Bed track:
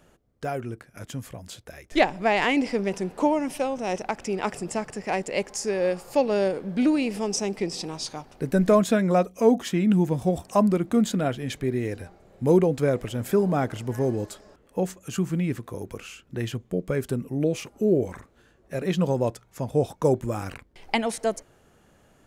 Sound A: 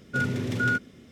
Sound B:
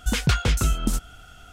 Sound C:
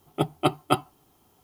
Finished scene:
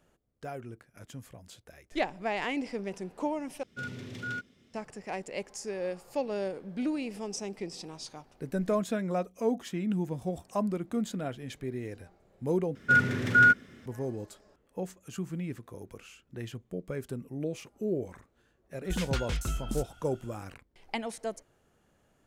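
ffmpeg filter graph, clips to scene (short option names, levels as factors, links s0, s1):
-filter_complex "[1:a]asplit=2[s0][s1];[0:a]volume=0.316[s2];[s0]equalizer=f=3700:w=0.56:g=6[s3];[s1]equalizer=f=1600:w=1.6:g=10.5[s4];[s2]asplit=3[s5][s6][s7];[s5]atrim=end=3.634[s8];[s3]atrim=end=1.11,asetpts=PTS-STARTPTS,volume=0.211[s9];[s6]atrim=start=4.736:end=12.754[s10];[s4]atrim=end=1.11,asetpts=PTS-STARTPTS,volume=0.75[s11];[s7]atrim=start=13.856[s12];[2:a]atrim=end=1.52,asetpts=PTS-STARTPTS,volume=0.282,afade=t=in:d=0.004:c=hsin,afade=t=out:st=1.516:d=0.004:c=hsin,adelay=18840[s13];[s8][s9]acrossfade=d=0.004:c1=hsin:c2=hsin[s14];[s14][s10]acrossfade=d=0.004:c1=hsin:c2=hsin[s15];[s15][s11]acrossfade=d=0.004:c1=hsin:c2=hsin[s16];[s16][s12]acrossfade=d=0.004:c1=hsin:c2=hsin[s17];[s17][s13]amix=inputs=2:normalize=0"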